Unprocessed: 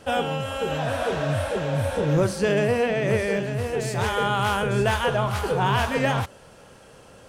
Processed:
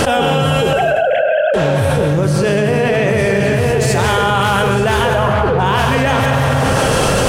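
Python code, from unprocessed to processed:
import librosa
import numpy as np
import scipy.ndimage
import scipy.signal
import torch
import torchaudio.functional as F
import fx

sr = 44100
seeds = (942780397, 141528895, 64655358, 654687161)

y = fx.sine_speech(x, sr, at=(0.73, 1.54))
y = fx.lowpass(y, sr, hz=2300.0, slope=12, at=(5.07, 5.58), fade=0.02)
y = y + 10.0 ** (-11.0 / 20.0) * np.pad(y, (int(188 * sr / 1000.0), 0))[:len(y)]
y = fx.rev_plate(y, sr, seeds[0], rt60_s=1.2, hf_ratio=0.8, predelay_ms=95, drr_db=7.0)
y = fx.env_flatten(y, sr, amount_pct=100)
y = y * 10.0 ** (2.5 / 20.0)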